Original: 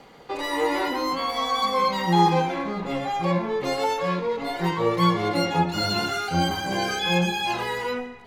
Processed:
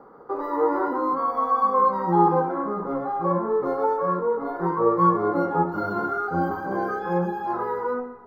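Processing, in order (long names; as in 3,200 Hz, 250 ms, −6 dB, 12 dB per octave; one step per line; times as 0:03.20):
drawn EQ curve 120 Hz 0 dB, 420 Hz +12 dB, 700 Hz +5 dB, 1,300 Hz +14 dB, 2,700 Hz −27 dB, 5,100 Hz −18 dB, 9,200 Hz −27 dB, 14,000 Hz −5 dB
level −7.5 dB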